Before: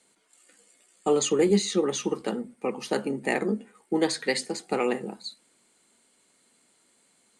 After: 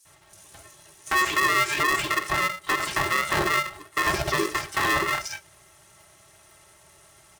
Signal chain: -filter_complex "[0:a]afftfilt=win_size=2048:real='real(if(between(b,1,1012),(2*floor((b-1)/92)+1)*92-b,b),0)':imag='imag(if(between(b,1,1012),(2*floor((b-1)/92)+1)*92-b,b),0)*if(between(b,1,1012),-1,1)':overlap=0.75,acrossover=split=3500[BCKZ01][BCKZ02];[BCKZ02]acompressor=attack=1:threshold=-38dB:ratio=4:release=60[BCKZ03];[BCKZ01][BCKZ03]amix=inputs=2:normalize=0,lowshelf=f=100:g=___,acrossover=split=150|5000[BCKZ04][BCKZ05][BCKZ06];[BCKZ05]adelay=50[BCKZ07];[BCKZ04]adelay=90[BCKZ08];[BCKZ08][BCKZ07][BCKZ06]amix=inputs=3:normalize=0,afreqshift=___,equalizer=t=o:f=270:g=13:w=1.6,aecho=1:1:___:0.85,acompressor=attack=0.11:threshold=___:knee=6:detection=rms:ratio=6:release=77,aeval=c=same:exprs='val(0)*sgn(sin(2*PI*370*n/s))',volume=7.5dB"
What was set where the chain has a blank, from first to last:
7.5, -64, 4.1, -25dB